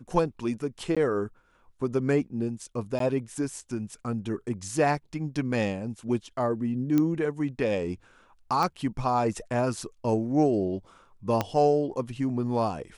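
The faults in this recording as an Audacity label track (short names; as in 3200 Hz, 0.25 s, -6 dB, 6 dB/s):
0.950000	0.970000	gap 16 ms
2.990000	3.000000	gap 13 ms
6.980000	6.980000	pop -13 dBFS
8.630000	8.630000	pop
11.410000	11.410000	pop -11 dBFS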